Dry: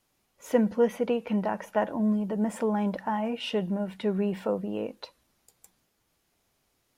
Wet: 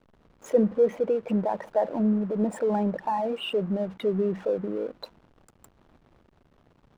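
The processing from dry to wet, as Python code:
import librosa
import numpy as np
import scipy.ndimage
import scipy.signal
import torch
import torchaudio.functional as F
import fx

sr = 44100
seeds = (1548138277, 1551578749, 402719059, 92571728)

y = fx.envelope_sharpen(x, sr, power=2.0)
y = fx.dmg_noise_band(y, sr, seeds[0], low_hz=150.0, high_hz=1500.0, level_db=-55.0)
y = fx.backlash(y, sr, play_db=-44.0)
y = F.gain(torch.from_numpy(y), 2.0).numpy()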